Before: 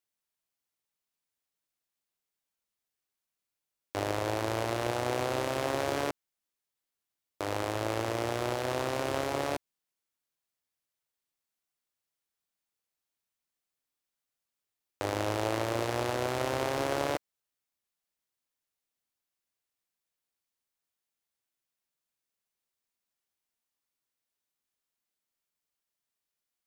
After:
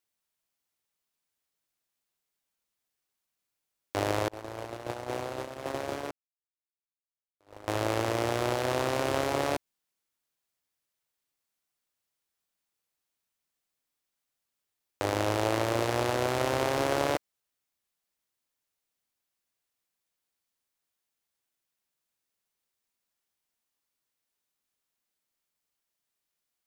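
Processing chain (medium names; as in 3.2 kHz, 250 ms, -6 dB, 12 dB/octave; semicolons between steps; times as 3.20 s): 4.28–7.68 s: gate -28 dBFS, range -38 dB; trim +3 dB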